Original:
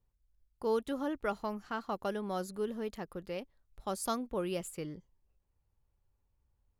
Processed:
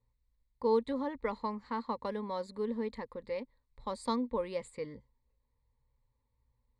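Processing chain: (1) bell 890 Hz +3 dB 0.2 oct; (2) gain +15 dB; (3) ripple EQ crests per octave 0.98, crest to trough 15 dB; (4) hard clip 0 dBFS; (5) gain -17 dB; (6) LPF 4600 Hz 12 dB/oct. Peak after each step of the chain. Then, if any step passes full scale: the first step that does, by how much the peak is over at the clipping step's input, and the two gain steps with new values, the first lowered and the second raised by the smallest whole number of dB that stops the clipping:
-20.5, -5.5, -2.0, -2.0, -19.0, -19.0 dBFS; no overload

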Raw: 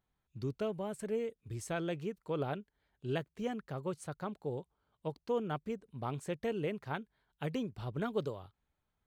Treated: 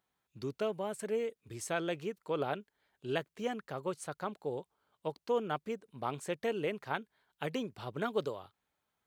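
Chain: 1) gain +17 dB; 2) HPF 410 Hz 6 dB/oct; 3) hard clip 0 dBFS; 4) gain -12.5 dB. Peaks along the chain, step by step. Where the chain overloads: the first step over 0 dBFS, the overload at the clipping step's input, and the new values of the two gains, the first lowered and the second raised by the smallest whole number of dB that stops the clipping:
-3.5, -3.5, -3.5, -16.0 dBFS; no overload

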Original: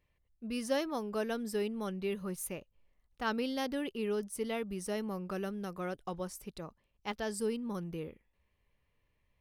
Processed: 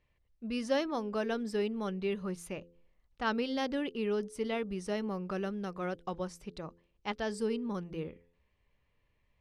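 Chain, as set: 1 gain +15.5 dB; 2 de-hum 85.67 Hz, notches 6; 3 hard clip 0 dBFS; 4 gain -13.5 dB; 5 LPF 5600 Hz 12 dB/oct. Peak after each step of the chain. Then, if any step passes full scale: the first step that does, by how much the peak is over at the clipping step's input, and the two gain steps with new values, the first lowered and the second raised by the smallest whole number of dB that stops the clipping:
-4.0, -5.0, -5.0, -18.5, -18.5 dBFS; no overload

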